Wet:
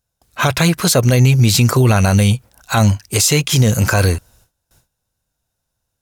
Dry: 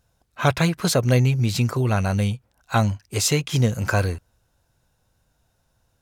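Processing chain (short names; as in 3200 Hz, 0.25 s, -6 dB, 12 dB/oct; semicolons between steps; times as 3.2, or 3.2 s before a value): gate with hold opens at -55 dBFS; high shelf 4500 Hz +9.5 dB; in parallel at +1.5 dB: vocal rider within 4 dB 0.5 s; on the sum: limiter -7.5 dBFS, peak gain reduction 11 dB; gain +3.5 dB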